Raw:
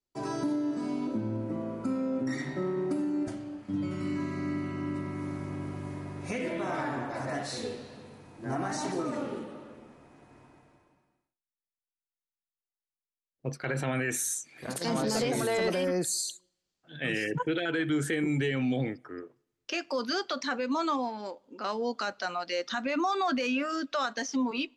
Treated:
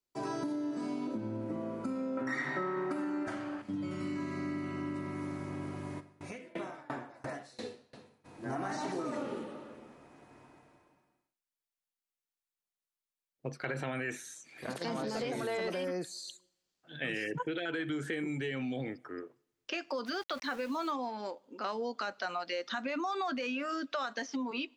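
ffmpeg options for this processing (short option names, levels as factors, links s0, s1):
-filter_complex "[0:a]asettb=1/sr,asplit=3[s0][s1][s2];[s0]atrim=end=2.174[s3];[s1]atrim=start=2.17:end=3.62,asetpts=PTS-STARTPTS,afade=t=in:d=0.004:c=qsin,afade=t=out:st=1.446:d=0.004:c=qsin,equalizer=f=1400:w=0.73:g=14.5[s4];[s2]atrim=start=3.616[s5];[s3][s4]acrossfade=d=0.004:c1=hsin:c2=qsin[s6];[s6][s5]acrossfade=d=0.004:c1=qsin:c2=hsin,asplit=3[s7][s8][s9];[s7]afade=t=out:st=5.99:d=0.02[s10];[s8]aeval=exprs='val(0)*pow(10,-26*if(lt(mod(2.9*n/s,1),2*abs(2.9)/1000),1-mod(2.9*n/s,1)/(2*abs(2.9)/1000),(mod(2.9*n/s,1)-2*abs(2.9)/1000)/(1-2*abs(2.9)/1000))/20)':c=same,afade=t=in:st=5.99:d=0.02,afade=t=out:st=8.24:d=0.02[s11];[s9]afade=t=in:st=8.24:d=0.02[s12];[s10][s11][s12]amix=inputs=3:normalize=0,asplit=3[s13][s14][s15];[s13]afade=t=out:st=20.05:d=0.02[s16];[s14]aeval=exprs='val(0)*gte(abs(val(0)),0.00841)':c=same,afade=t=in:st=20.05:d=0.02,afade=t=out:st=20.9:d=0.02[s17];[s15]afade=t=in:st=20.9:d=0.02[s18];[s16][s17][s18]amix=inputs=3:normalize=0,acompressor=threshold=0.0282:ratio=6,lowshelf=f=160:g=-7,acrossover=split=4400[s19][s20];[s20]acompressor=threshold=0.002:ratio=4:attack=1:release=60[s21];[s19][s21]amix=inputs=2:normalize=0"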